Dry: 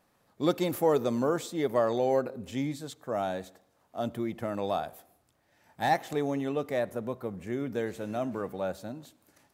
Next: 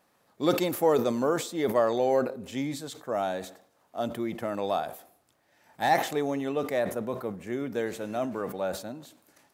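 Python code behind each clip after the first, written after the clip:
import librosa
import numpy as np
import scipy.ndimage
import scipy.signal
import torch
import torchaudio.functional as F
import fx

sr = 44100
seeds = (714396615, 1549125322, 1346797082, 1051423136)

y = fx.low_shelf(x, sr, hz=130.0, db=-11.5)
y = fx.sustainer(y, sr, db_per_s=110.0)
y = F.gain(torch.from_numpy(y), 2.5).numpy()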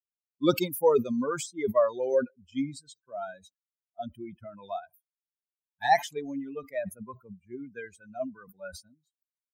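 y = fx.bin_expand(x, sr, power=3.0)
y = F.gain(torch.from_numpy(y), 5.0).numpy()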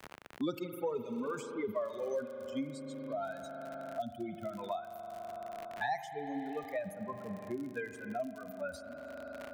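y = fx.rev_spring(x, sr, rt60_s=2.6, pass_ms=(41,), chirp_ms=75, drr_db=9.5)
y = fx.dmg_crackle(y, sr, seeds[0], per_s=63.0, level_db=-44.0)
y = fx.band_squash(y, sr, depth_pct=100)
y = F.gain(torch.from_numpy(y), -8.0).numpy()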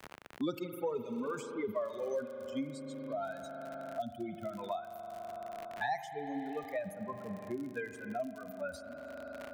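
y = x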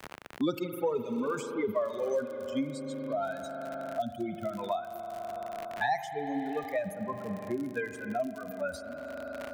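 y = x + 10.0 ** (-23.0 / 20.0) * np.pad(x, (int(741 * sr / 1000.0), 0))[:len(x)]
y = F.gain(torch.from_numpy(y), 5.5).numpy()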